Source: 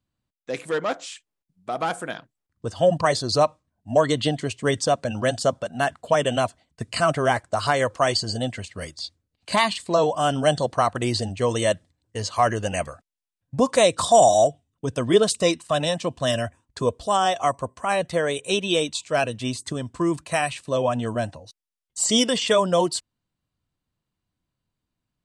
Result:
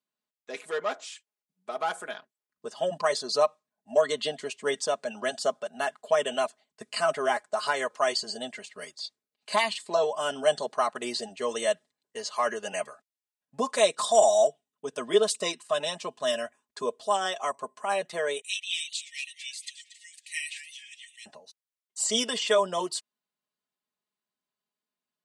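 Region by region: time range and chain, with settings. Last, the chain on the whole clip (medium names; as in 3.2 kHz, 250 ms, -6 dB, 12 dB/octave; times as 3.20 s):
18.41–21.26 s: brick-wall FIR high-pass 1.8 kHz + modulated delay 227 ms, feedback 35%, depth 208 cents, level -13 dB
whole clip: high-pass 390 Hz 12 dB/octave; comb 4.8 ms, depth 74%; trim -6.5 dB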